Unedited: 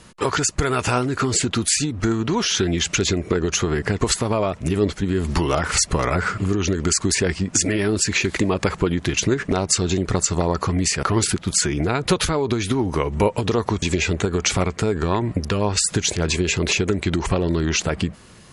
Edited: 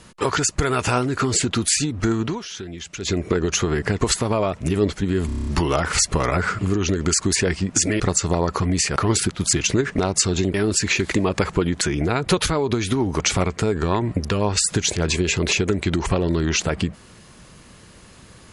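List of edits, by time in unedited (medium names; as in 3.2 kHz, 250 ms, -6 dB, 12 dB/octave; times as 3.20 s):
2.24–3.15 s: dip -13 dB, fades 0.16 s
5.26 s: stutter 0.03 s, 8 plays
7.79–9.06 s: swap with 10.07–11.60 s
12.99–14.40 s: delete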